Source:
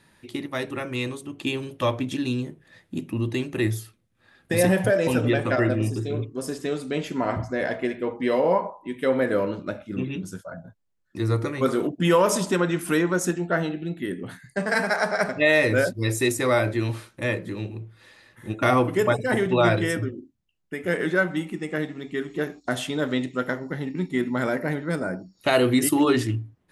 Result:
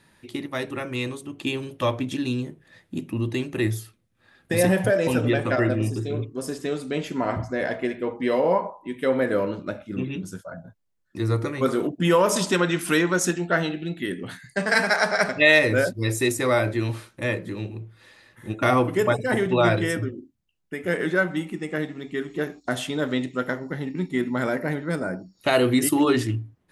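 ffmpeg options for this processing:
-filter_complex "[0:a]asettb=1/sr,asplit=3[a][b][c];[a]atrim=end=12.364[d];[b]atrim=start=12.36:end=15.59,asetpts=PTS-STARTPTS,afade=t=in:d=0.004:c=qsin,afade=t=out:st=3.226:d=0.004:c=qsin,equalizer=f=3.9k:w=0.48:g=7[e];[c]atrim=start=15.586[f];[d][e]acrossfade=d=0.004:c1=hsin:c2=qsin[g];[g][f]acrossfade=d=0.004:c1=qsin:c2=hsin"

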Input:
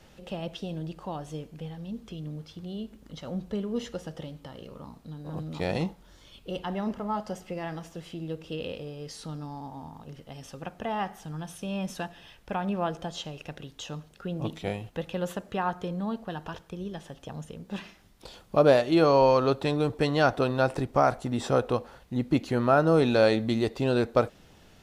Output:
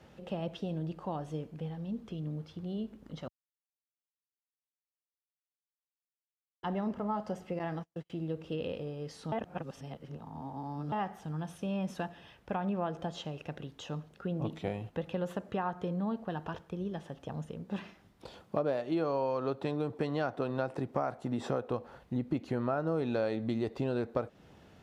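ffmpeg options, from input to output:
-filter_complex "[0:a]asettb=1/sr,asplit=3[a][b][c];[a]atrim=end=7.594[d];[b]atrim=start=7.59:end=8.1,asetpts=PTS-STARTPTS,afade=t=in:d=0.004:c=qsin,afade=t=out:st=0.506:d=0.004:c=qsin,agate=range=-39dB:threshold=-41dB:ratio=16:release=100:detection=peak[e];[c]atrim=start=8.096[f];[d][e]acrossfade=d=0.004:c1=hsin:c2=qsin[g];[g][f]acrossfade=d=0.004:c1=qsin:c2=hsin,asettb=1/sr,asplit=3[h][i][j];[h]atrim=end=18.424[k];[i]atrim=start=18.42:end=21.7,asetpts=PTS-STARTPTS,afade=t=in:d=0.004:c=qsin,afade=t=out:st=3.276:d=0.004:c=qsin,highpass=110[l];[j]atrim=start=21.696[m];[k][l]acrossfade=d=0.004:c1=hsin:c2=qsin[n];[n][m]acrossfade=d=0.004:c1=qsin:c2=hsin,asplit=5[o][p][q][r][s];[o]atrim=end=3.28,asetpts=PTS-STARTPTS,afade=t=out:st=3.276:d=0.004:c=hsin[t];[p]atrim=start=3.28:end=6.63,asetpts=PTS-STARTPTS,volume=0[u];[q]atrim=start=6.63:end=9.322,asetpts=PTS-STARTPTS,afade=t=in:d=0.004:c=hsin[v];[r]atrim=start=9.318:end=10.922,asetpts=PTS-STARTPTS,areverse[w];[s]atrim=start=10.918[x];[t][u][v]concat=n=3:v=0:a=1[y];[y][w]acrossfade=d=0.004:c1=hsin:c2=hsin[z];[z][x]acrossfade=d=0.004:c1=hsin:c2=hsin,highpass=72,highshelf=f=2.9k:g=-11.5,acompressor=threshold=-30dB:ratio=4"

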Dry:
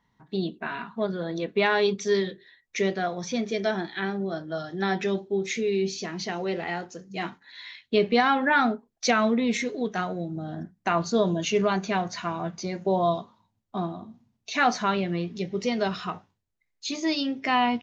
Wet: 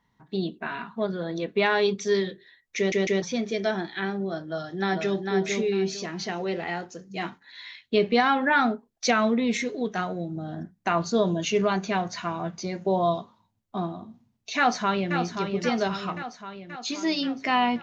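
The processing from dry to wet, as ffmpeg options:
-filter_complex "[0:a]asplit=2[a][b];[b]afade=t=in:st=4.47:d=0.01,afade=t=out:st=5.25:d=0.01,aecho=0:1:450|900|1350:0.630957|0.157739|0.0394348[c];[a][c]amix=inputs=2:normalize=0,asplit=2[d][e];[e]afade=t=in:st=14.57:d=0.01,afade=t=out:st=15.16:d=0.01,aecho=0:1:530|1060|1590|2120|2650|3180|3710|4240|4770:0.446684|0.290344|0.188724|0.12267|0.0797358|0.0518283|0.0336884|0.0218974|0.0142333[f];[d][f]amix=inputs=2:normalize=0,asplit=4[g][h][i][j];[g]atrim=end=2.922[k];[h]atrim=start=2.768:end=2.922[l];[i]atrim=start=2.768:end=2.922[m];[j]atrim=start=3.218[n];[k][l]acrossfade=d=0.004:c1=hsin:c2=hsin[o];[o][m]acrossfade=d=0.004:c1=hsin:c2=hsin[p];[p][n]acrossfade=d=0.004:c1=hsin:c2=hsin"

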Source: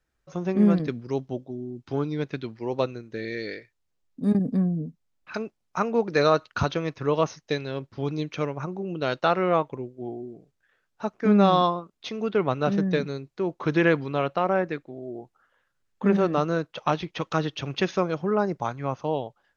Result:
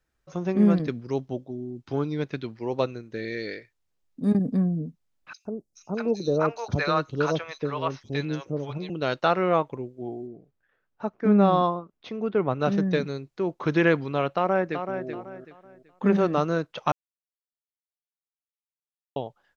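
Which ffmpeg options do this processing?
-filter_complex "[0:a]asettb=1/sr,asplit=3[a][b][c];[a]atrim=end=5.334[d];[b]atrim=start=5.33:end=8.9,asetpts=PTS-STARTPTS,afade=t=in:d=0.004:c=qsin,afade=t=out:st=3.566:d=0.004:c=qsin,acrossover=split=640|4800[e][f][g];[e]adelay=120[h];[f]adelay=640[i];[h][i][g]amix=inputs=3:normalize=0,atrim=end_sample=157437[j];[c]atrim=start=8.896[k];[d][j]acrossfade=d=0.004:c1=hsin:c2=qsin[l];[l][k]acrossfade=d=0.004:c1=qsin:c2=hsin,asettb=1/sr,asplit=3[m][n][o];[m]atrim=end=10.274[p];[n]atrim=start=10.27:end=12.6,asetpts=PTS-STARTPTS,afade=t=in:d=0.004:c=qsin,afade=t=out:st=2.326:d=0.004:c=qsin,lowpass=f=1.4k:p=1[q];[o]atrim=start=12.596[r];[p][q]acrossfade=d=0.004:c1=hsin:c2=qsin[s];[s][r]acrossfade=d=0.004:c1=qsin:c2=hsin,asplit=2[t][u];[u]afade=t=in:st=14.35:d=0.01,afade=t=out:st=15.06:d=0.01,aecho=0:1:380|760|1140|1520:0.398107|0.119432|0.0358296|0.0107489[v];[t][v]amix=inputs=2:normalize=0,asplit=3[w][x][y];[w]atrim=end=16.92,asetpts=PTS-STARTPTS,afade=t=out:st=16.916:d=0.004:c=hsin[z];[x]atrim=start=16.92:end=19.16,asetpts=PTS-STARTPTS,volume=0[aa];[y]atrim=start=19.16,asetpts=PTS-STARTPTS,afade=t=in:d=0.004:c=hsin[ab];[z][aa][ab]concat=n=3:v=0:a=1"

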